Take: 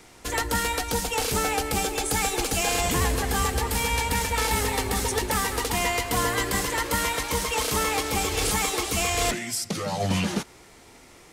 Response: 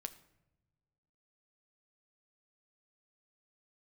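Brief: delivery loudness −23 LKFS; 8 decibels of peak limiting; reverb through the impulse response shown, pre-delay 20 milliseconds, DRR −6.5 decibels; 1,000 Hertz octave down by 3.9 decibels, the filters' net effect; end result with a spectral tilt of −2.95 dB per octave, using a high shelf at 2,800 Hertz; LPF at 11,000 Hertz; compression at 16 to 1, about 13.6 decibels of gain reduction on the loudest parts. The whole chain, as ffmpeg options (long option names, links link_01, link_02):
-filter_complex "[0:a]lowpass=11000,equalizer=frequency=1000:width_type=o:gain=-6,highshelf=frequency=2800:gain=6.5,acompressor=threshold=-33dB:ratio=16,alimiter=level_in=3.5dB:limit=-24dB:level=0:latency=1,volume=-3.5dB,asplit=2[link_01][link_02];[1:a]atrim=start_sample=2205,adelay=20[link_03];[link_02][link_03]afir=irnorm=-1:irlink=0,volume=10dB[link_04];[link_01][link_04]amix=inputs=2:normalize=0,volume=6dB"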